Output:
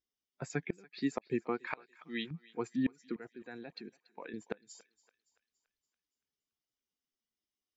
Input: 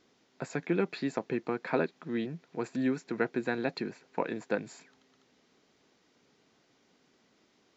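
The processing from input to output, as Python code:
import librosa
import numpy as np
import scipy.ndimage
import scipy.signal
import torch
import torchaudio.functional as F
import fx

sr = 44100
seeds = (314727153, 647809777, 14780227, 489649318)

y = fx.bin_expand(x, sr, power=1.5)
y = fx.noise_reduce_blind(y, sr, reduce_db=12)
y = fx.tilt_shelf(y, sr, db=-8.5, hz=940.0, at=(1.7, 2.31))
y = fx.level_steps(y, sr, step_db=24, at=(3.16, 4.34))
y = fx.gate_flip(y, sr, shuts_db=-22.0, range_db=-31)
y = fx.echo_thinned(y, sr, ms=284, feedback_pct=54, hz=770.0, wet_db=-20.0)
y = F.gain(torch.from_numpy(y), 2.0).numpy()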